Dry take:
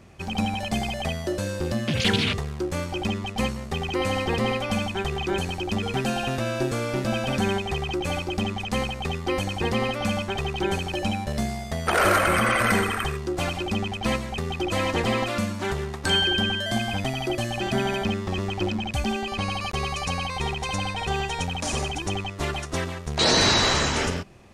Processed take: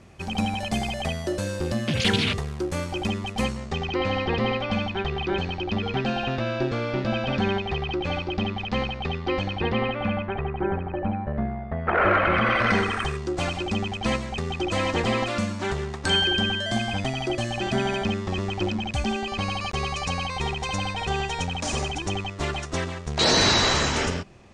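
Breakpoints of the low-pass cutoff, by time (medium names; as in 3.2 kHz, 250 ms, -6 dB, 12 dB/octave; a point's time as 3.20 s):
low-pass 24 dB/octave
3.39 s 12 kHz
4.01 s 4.5 kHz
9.40 s 4.5 kHz
10.71 s 1.7 kHz
11.70 s 1.7 kHz
12.41 s 3.6 kHz
13.09 s 8.5 kHz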